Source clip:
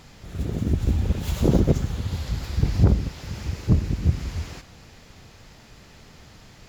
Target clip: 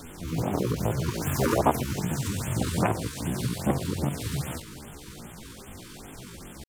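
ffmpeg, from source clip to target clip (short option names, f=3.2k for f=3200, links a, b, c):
-filter_complex "[0:a]asetrate=78577,aresample=44100,atempo=0.561231,acrossover=split=600|1400[a][b][c];[a]acompressor=threshold=-31dB:ratio=6[d];[d][b][c]amix=inputs=3:normalize=0,bandreject=f=50:t=h:w=6,bandreject=f=100:t=h:w=6,bandreject=f=150:t=h:w=6,afftfilt=real='re*(1-between(b*sr/1024,620*pow(5200/620,0.5+0.5*sin(2*PI*2.5*pts/sr))/1.41,620*pow(5200/620,0.5+0.5*sin(2*PI*2.5*pts/sr))*1.41))':imag='im*(1-between(b*sr/1024,620*pow(5200/620,0.5+0.5*sin(2*PI*2.5*pts/sr))/1.41,620*pow(5200/620,0.5+0.5*sin(2*PI*2.5*pts/sr))*1.41))':win_size=1024:overlap=0.75,volume=5.5dB"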